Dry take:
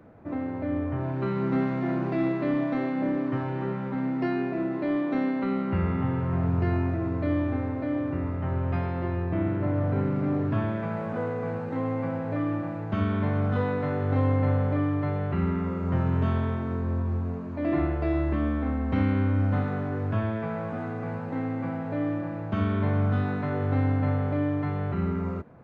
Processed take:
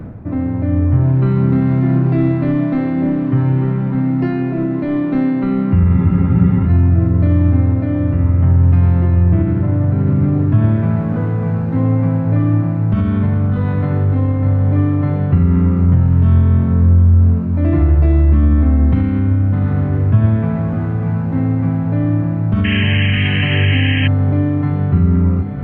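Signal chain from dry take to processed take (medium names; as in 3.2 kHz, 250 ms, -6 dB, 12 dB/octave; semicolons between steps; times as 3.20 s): tone controls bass +14 dB, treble -2 dB; on a send: echo that smears into a reverb 760 ms, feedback 57%, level -15 dB; on the sum: peak limiter -11 dBFS, peak gain reduction 8 dB; de-hum 49.59 Hz, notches 18; reverse; upward compressor, threshold -22 dBFS; reverse; painted sound noise, 22.64–24.08 s, 1.6–3.2 kHz -26 dBFS; bass shelf 200 Hz +3 dB; spectral freeze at 5.99 s, 0.69 s; trim +4.5 dB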